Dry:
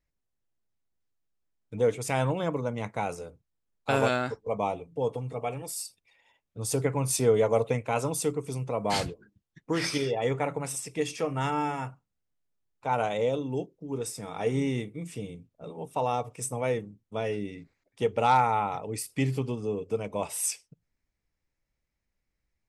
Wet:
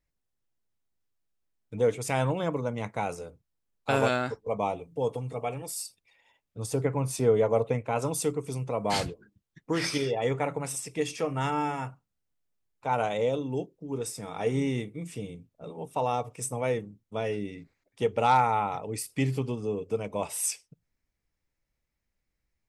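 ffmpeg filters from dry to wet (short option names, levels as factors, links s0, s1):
-filter_complex "[0:a]asettb=1/sr,asplit=3[s0][s1][s2];[s0]atrim=end=4.794[s3];[s1]atrim=start=4.79:end=5.42,asetpts=PTS-STARTPTS,afade=t=in:d=0.004:c=qsin,afade=t=out:st=0.626:d=0.004:c=qsin,highshelf=f=5300:g=5.5[s4];[s2]atrim=start=5.416[s5];[s3][s4]acrossfade=d=0.004:c1=hsin:c2=qsin[s6];[s6][s5]acrossfade=d=0.004:c1=qsin:c2=hsin,asettb=1/sr,asplit=3[s7][s8][s9];[s7]atrim=end=6.664[s10];[s8]atrim=start=6.66:end=8.02,asetpts=PTS-STARTPTS,afade=t=in:d=0.004:c=qsin,afade=t=out:st=1.356:d=0.004:c=qsin,highshelf=f=2600:g=-8.5[s11];[s9]atrim=start=8.016[s12];[s10][s11]acrossfade=d=0.004:c1=hsin:c2=qsin[s13];[s13][s12]acrossfade=d=0.004:c1=qsin:c2=hsin"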